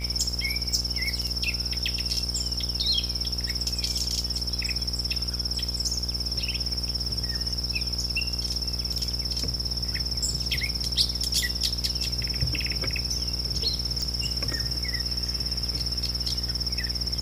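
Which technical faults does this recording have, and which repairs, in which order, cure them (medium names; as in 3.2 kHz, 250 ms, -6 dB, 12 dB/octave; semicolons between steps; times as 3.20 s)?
buzz 60 Hz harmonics 28 -33 dBFS
crackle 32 per s -37 dBFS
14.02 s: pop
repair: de-click; de-hum 60 Hz, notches 28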